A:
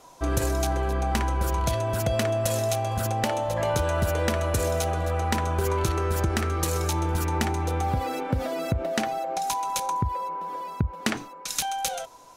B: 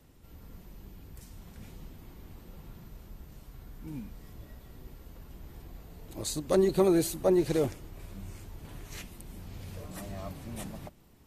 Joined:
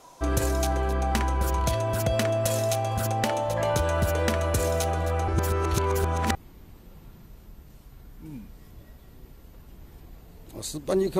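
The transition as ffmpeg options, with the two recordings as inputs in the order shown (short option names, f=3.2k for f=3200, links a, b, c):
-filter_complex "[0:a]apad=whole_dur=11.19,atrim=end=11.19,asplit=2[a][b];[a]atrim=end=5.282[c];[b]atrim=start=5.278:end=6.352,asetpts=PTS-STARTPTS,areverse[d];[1:a]atrim=start=1.968:end=6.81[e];[c][d]acrossfade=d=0.004:c1=hsin:c2=hsin[f];[f][e]acrossfade=d=0.004:c1=hsin:c2=hsin"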